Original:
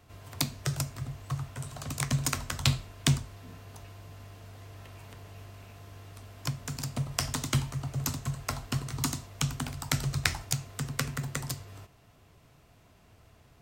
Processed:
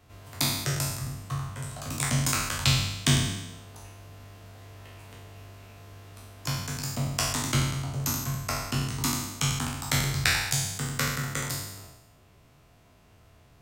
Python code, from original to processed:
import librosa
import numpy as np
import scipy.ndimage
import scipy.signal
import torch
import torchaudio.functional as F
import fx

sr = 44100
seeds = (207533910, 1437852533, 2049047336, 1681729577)

y = fx.spec_trails(x, sr, decay_s=1.03)
y = y * 10.0 ** (-1.0 / 20.0)